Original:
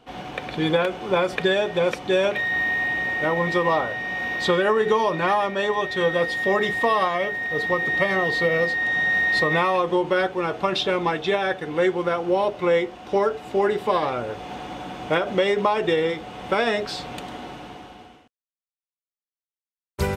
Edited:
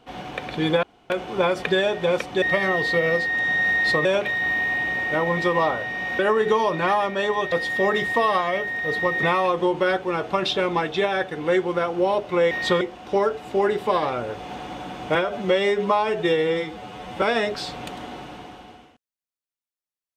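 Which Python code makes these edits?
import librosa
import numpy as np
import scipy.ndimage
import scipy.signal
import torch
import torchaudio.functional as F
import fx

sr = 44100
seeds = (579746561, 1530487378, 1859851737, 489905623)

y = fx.edit(x, sr, fx.insert_room_tone(at_s=0.83, length_s=0.27),
    fx.move(start_s=4.29, length_s=0.3, to_s=12.81),
    fx.cut(start_s=5.92, length_s=0.27),
    fx.move(start_s=7.9, length_s=1.63, to_s=2.15),
    fx.stretch_span(start_s=15.15, length_s=1.38, factor=1.5), tone=tone)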